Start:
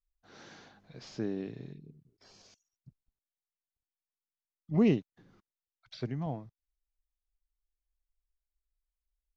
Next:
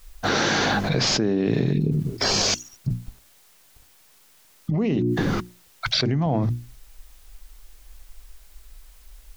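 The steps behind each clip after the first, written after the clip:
mains-hum notches 60/120/180/240/300/360 Hz
envelope flattener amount 100%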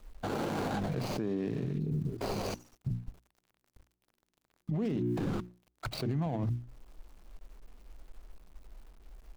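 running median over 25 samples
brickwall limiter −20.5 dBFS, peak gain reduction 10 dB
level −5 dB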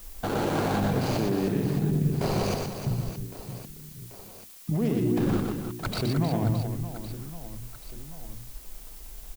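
reverse bouncing-ball delay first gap 120 ms, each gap 1.6×, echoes 5
background noise blue −54 dBFS
level +5.5 dB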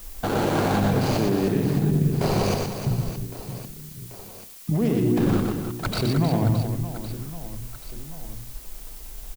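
single-tap delay 91 ms −14 dB
level +4 dB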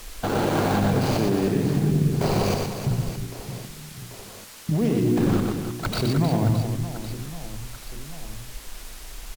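bad sample-rate conversion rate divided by 2×, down none, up hold

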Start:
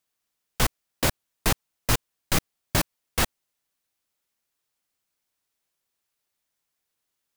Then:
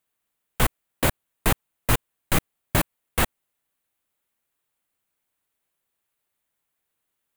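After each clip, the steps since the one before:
parametric band 5,300 Hz −10.5 dB 0.82 octaves
level +2.5 dB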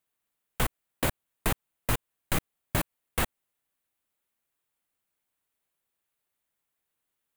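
downward compressor 2 to 1, threshold −21 dBFS, peak gain reduction 4.5 dB
level −3.5 dB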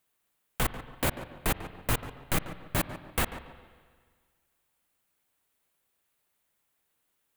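on a send at −20.5 dB: convolution reverb RT60 1.8 s, pre-delay 44 ms
on the sum: brickwall limiter −22 dBFS, peak gain reduction 9.5 dB
tape delay 143 ms, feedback 39%, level −9.5 dB, low-pass 1,600 Hz
level +6 dB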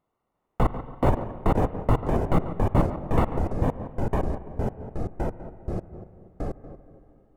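Savitzky-Golay smoothing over 65 samples
pitch vibrato 1.4 Hz 14 cents
delay with pitch and tempo change per echo 353 ms, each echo −3 semitones, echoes 3
level +8.5 dB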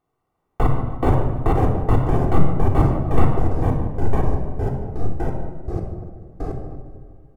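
repeating echo 151 ms, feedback 52%, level −18.5 dB
rectangular room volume 3,300 cubic metres, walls furnished, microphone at 3.6 metres

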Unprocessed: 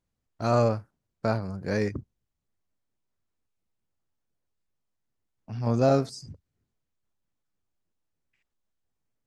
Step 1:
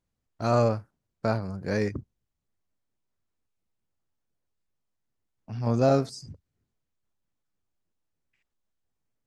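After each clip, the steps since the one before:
no processing that can be heard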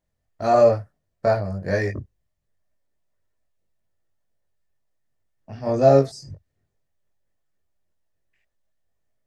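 hollow resonant body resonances 610/1,800 Hz, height 10 dB, ringing for 20 ms
multi-voice chorus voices 6, 0.64 Hz, delay 21 ms, depth 1.5 ms
level +4.5 dB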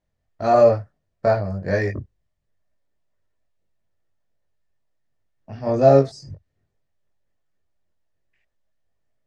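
high-frequency loss of the air 65 metres
level +1.5 dB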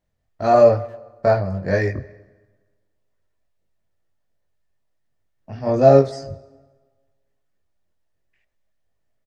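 far-end echo of a speakerphone 270 ms, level −28 dB
dense smooth reverb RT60 1.4 s, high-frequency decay 0.75×, DRR 17.5 dB
level +1.5 dB

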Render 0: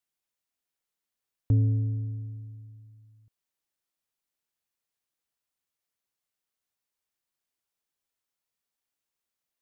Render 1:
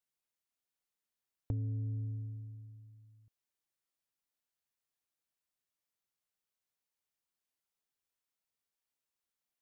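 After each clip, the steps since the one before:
downward compressor 6 to 1, threshold −29 dBFS, peak gain reduction 10 dB
level −4.5 dB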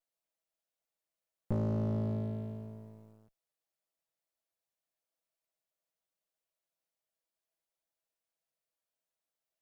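lower of the sound and its delayed copy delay 6.1 ms
parametric band 610 Hz +12.5 dB 0.63 octaves
leveller curve on the samples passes 2
level +2 dB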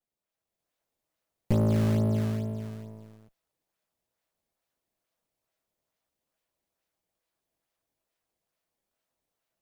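in parallel at −3 dB: sample-and-hold swept by an LFO 18×, swing 160% 2.3 Hz
on the sum: automatic gain control gain up to 7.5 dB
level −4 dB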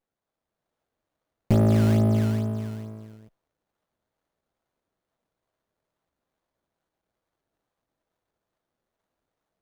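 windowed peak hold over 17 samples
level +5 dB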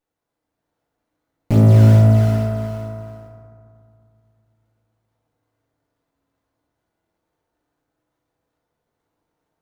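feedback delay network reverb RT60 2.3 s, low-frequency decay 1.4×, high-frequency decay 0.35×, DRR −3 dB
level +1 dB

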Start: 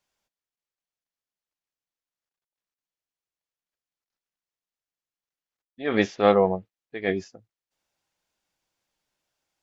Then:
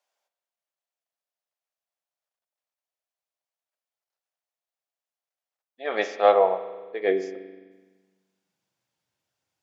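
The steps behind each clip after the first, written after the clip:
spring reverb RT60 1.4 s, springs 42 ms, chirp 25 ms, DRR 10 dB
high-pass filter sweep 620 Hz → 100 Hz, 0:06.52–0:09.16
level −2.5 dB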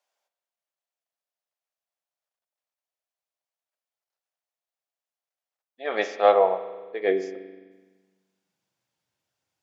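no processing that can be heard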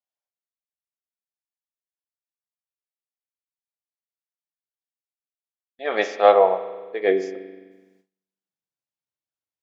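noise gate with hold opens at −54 dBFS
level +3.5 dB

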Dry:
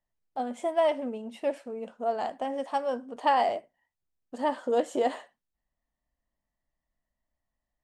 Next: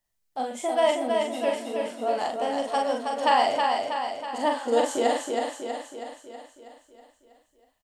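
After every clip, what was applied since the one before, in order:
high-shelf EQ 2,600 Hz +11 dB
double-tracking delay 43 ms −3 dB
on a send: repeating echo 322 ms, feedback 56%, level −4 dB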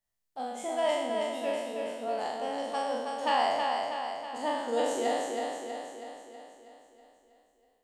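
peak hold with a decay on every bin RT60 1.15 s
level −8.5 dB

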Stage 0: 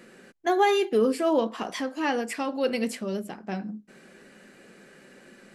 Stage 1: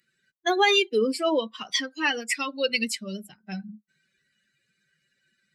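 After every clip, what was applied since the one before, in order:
spectral dynamics exaggerated over time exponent 2
in parallel at −1.5 dB: downward compressor, threshold −34 dBFS, peak gain reduction 15 dB
on the sum: meter weighting curve D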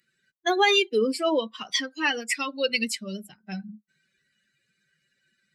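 no processing that can be heard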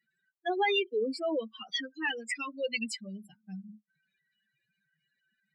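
expanding power law on the bin magnitudes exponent 2.2
level −7 dB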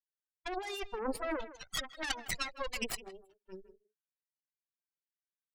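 harmonic generator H 7 −17 dB, 8 −18 dB, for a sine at −17.5 dBFS
compressor whose output falls as the input rises −36 dBFS, ratio −1
far-end echo of a speakerphone 160 ms, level −15 dB

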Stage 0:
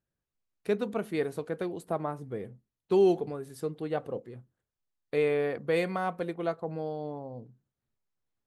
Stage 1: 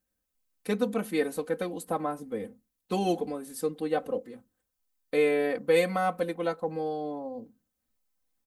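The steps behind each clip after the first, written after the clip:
high-shelf EQ 7,200 Hz +11.5 dB
comb filter 3.9 ms, depth 96%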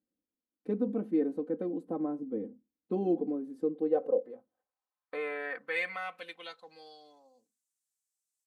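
in parallel at −3 dB: brickwall limiter −22.5 dBFS, peak gain reduction 10 dB
on the sum: band-pass filter sweep 300 Hz → 7,800 Hz, 0:03.52–0:07.49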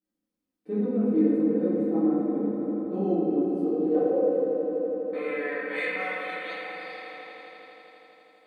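echo that builds up and dies away 82 ms, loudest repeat 5, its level −13.5 dB
convolution reverb RT60 2.3 s, pre-delay 5 ms, DRR −11.5 dB
level −7 dB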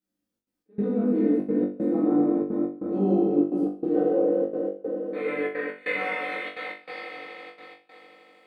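gate pattern "xxxxx.xx..xxx" 192 BPM −24 dB
on a send: flutter between parallel walls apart 3.5 metres, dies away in 0.36 s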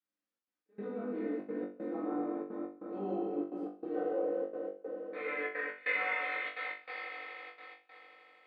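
resonant band-pass 1,600 Hz, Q 0.79
level −2.5 dB

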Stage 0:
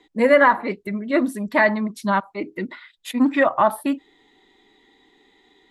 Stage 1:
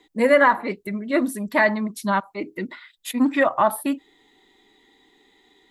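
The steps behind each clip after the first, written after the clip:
high-shelf EQ 7,900 Hz +11 dB
level −1.5 dB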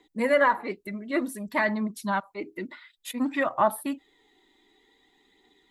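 phase shifter 0.55 Hz, delay 3.5 ms, feedback 32%
level −6 dB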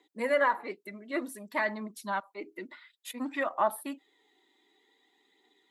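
high-pass filter 290 Hz 12 dB per octave
level −4.5 dB

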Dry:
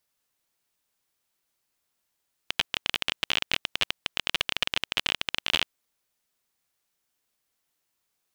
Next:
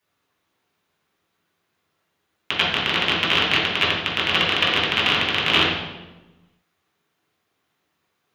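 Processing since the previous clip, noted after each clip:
convolution reverb RT60 1.1 s, pre-delay 3 ms, DRR −6.5 dB
level −3 dB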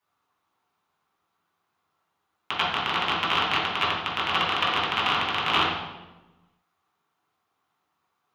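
flat-topped bell 1,000 Hz +9 dB 1.1 octaves
level −7 dB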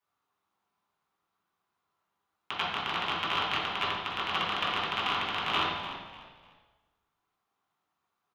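tuned comb filter 200 Hz, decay 1.1 s, mix 70%
echo with shifted repeats 298 ms, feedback 31%, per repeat −52 Hz, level −12.5 dB
level +3.5 dB

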